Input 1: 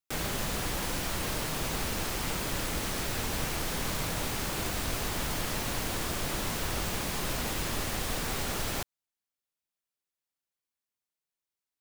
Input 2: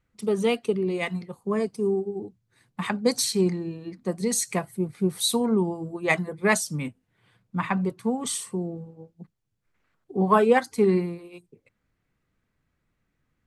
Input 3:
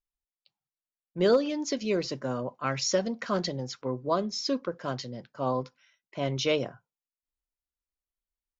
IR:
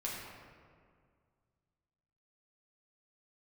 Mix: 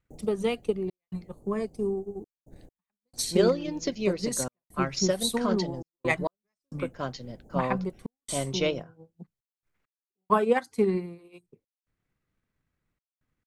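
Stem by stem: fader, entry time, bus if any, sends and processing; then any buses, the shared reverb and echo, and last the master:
-3.5 dB, 0.00 s, no send, median filter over 41 samples; Chebyshev band-stop 820–6500 Hz, order 4; auto duck -11 dB, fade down 0.20 s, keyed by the second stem
-5.5 dB, 0.00 s, no send, dry
-2.0 dB, 2.15 s, no send, dry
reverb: off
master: transient shaper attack +4 dB, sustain -4 dB; step gate "xxxx.xxxxx.x..xx" 67 bpm -60 dB

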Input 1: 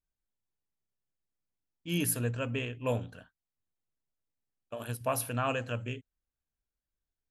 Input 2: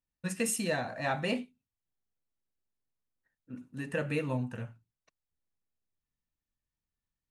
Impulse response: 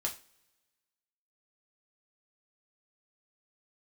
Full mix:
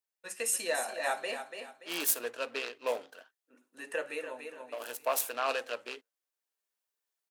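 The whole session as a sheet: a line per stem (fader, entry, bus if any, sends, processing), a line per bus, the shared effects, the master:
-4.5 dB, 0.00 s, no send, no echo send, noise-modulated delay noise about 1300 Hz, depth 0.03 ms
-4.5 dB, 0.00 s, no send, echo send -10.5 dB, auto duck -13 dB, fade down 0.80 s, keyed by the first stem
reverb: off
echo: feedback echo 0.288 s, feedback 35%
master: HPF 400 Hz 24 dB/oct; high shelf 7500 Hz +6.5 dB; AGC gain up to 5 dB

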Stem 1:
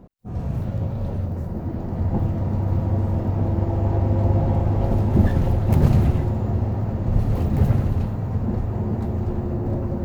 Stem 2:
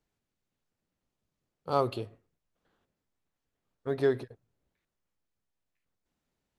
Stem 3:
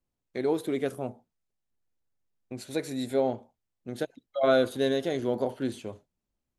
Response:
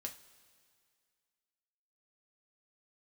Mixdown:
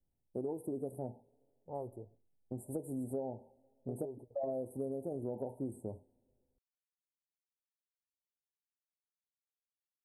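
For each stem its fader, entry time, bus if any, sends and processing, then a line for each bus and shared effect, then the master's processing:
off
-11.5 dB, 0.00 s, no send, low-pass opened by the level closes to 330 Hz, open at -26 dBFS
-3.5 dB, 0.00 s, send -15 dB, low shelf 180 Hz +6 dB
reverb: on, pre-delay 3 ms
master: Chebyshev band-stop 900–8300 Hz, order 5; compressor 10:1, threshold -35 dBFS, peak gain reduction 14 dB

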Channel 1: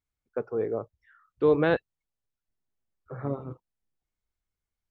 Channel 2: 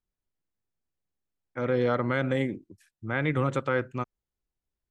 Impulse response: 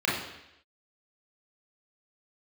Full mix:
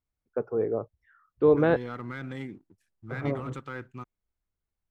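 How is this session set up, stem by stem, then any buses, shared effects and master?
+2.0 dB, 0.00 s, no send, high shelf 2100 Hz -11.5 dB
-11.5 dB, 0.00 s, no send, bell 570 Hz -14 dB 0.37 oct; sample leveller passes 1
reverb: off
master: dry

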